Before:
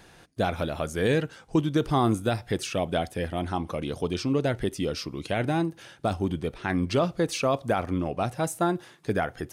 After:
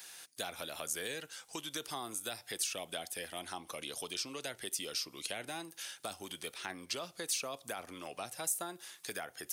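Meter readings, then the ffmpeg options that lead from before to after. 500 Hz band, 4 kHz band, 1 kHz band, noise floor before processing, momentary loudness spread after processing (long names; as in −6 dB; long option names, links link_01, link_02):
−17.5 dB, −2.5 dB, −15.0 dB, −54 dBFS, 8 LU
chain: -filter_complex "[0:a]acrossover=split=420|840[link_01][link_02][link_03];[link_01]acompressor=threshold=-31dB:ratio=4[link_04];[link_02]acompressor=threshold=-36dB:ratio=4[link_05];[link_03]acompressor=threshold=-43dB:ratio=4[link_06];[link_04][link_05][link_06]amix=inputs=3:normalize=0,aderivative,volume=11dB"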